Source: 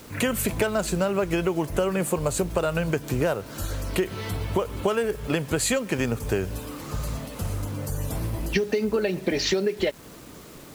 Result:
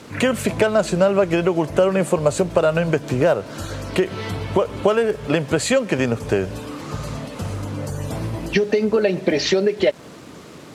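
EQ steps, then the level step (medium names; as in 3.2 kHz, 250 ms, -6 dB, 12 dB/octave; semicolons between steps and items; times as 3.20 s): high-pass 98 Hz 12 dB/octave; dynamic bell 600 Hz, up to +5 dB, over -40 dBFS, Q 3.1; distance through air 59 m; +5.5 dB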